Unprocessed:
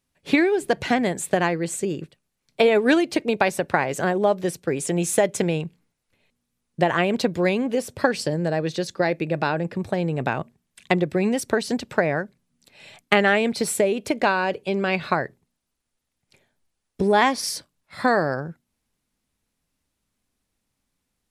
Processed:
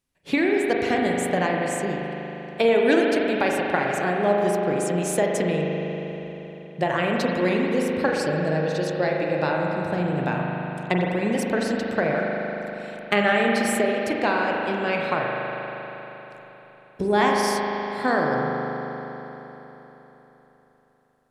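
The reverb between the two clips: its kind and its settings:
spring reverb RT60 3.9 s, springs 39 ms, chirp 55 ms, DRR −1.5 dB
level −4 dB

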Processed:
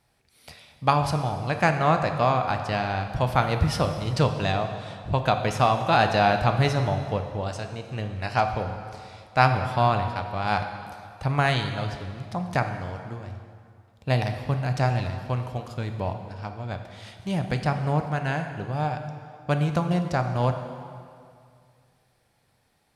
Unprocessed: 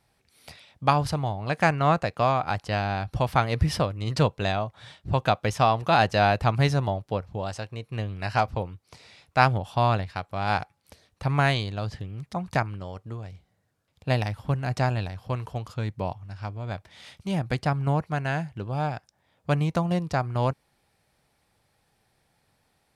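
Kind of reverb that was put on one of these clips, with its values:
dense smooth reverb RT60 2.3 s, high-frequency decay 0.8×, DRR 6 dB

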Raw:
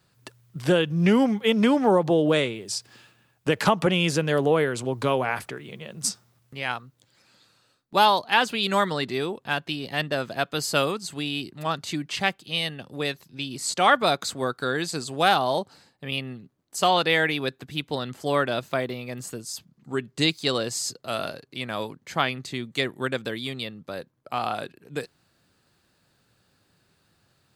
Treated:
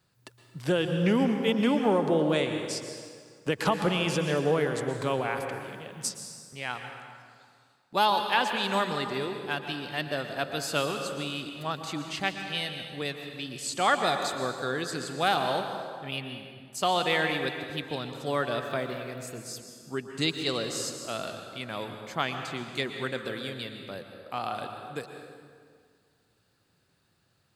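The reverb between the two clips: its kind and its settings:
dense smooth reverb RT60 2 s, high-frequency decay 0.7×, pre-delay 105 ms, DRR 5.5 dB
level −5.5 dB

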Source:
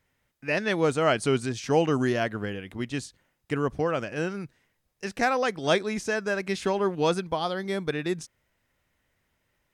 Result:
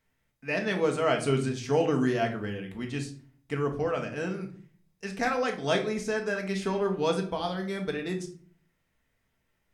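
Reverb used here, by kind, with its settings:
rectangular room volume 440 cubic metres, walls furnished, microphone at 1.6 metres
level −5 dB

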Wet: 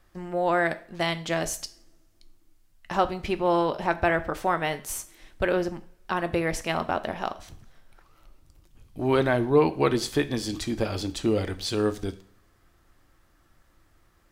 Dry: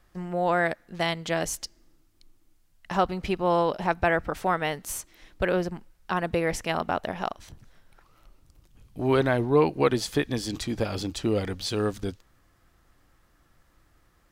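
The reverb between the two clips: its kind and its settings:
coupled-rooms reverb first 0.42 s, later 1.7 s, from −27 dB, DRR 10 dB

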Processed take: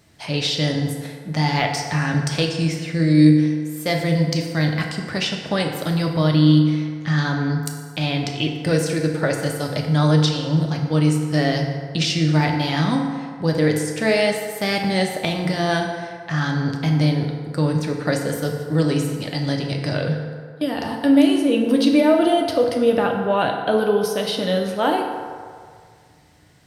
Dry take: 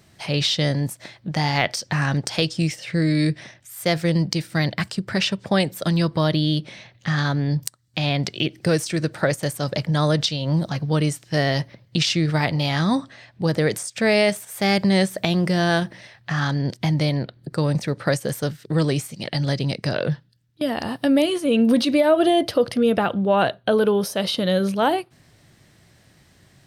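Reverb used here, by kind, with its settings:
feedback delay network reverb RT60 2 s, low-frequency decay 0.7×, high-frequency decay 0.5×, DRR 1 dB
level −2 dB

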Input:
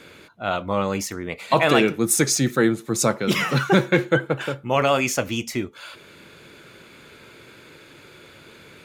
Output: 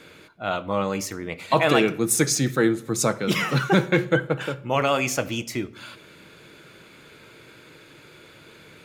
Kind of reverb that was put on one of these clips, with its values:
rectangular room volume 3,300 cubic metres, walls furnished, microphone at 0.55 metres
level −2 dB

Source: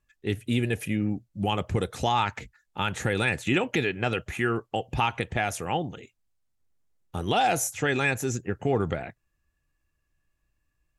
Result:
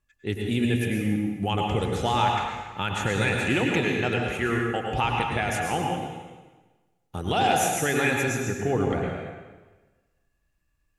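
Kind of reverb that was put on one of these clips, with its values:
dense smooth reverb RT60 1.3 s, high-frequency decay 0.9×, pre-delay 90 ms, DRR 0 dB
level −1 dB

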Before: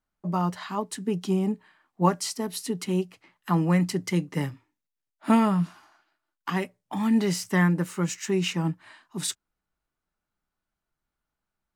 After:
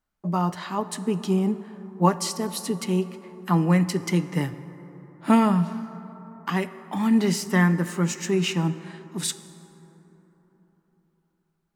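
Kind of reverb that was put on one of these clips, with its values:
dense smooth reverb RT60 4.1 s, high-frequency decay 0.35×, DRR 12.5 dB
level +2 dB

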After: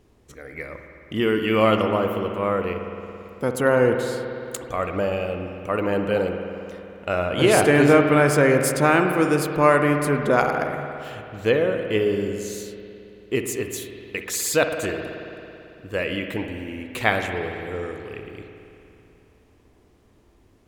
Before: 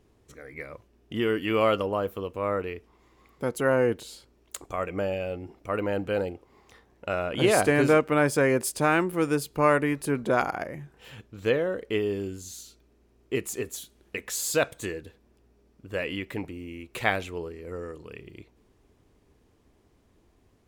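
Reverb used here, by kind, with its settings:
spring reverb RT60 2.9 s, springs 55 ms, chirp 50 ms, DRR 5 dB
level +4.5 dB

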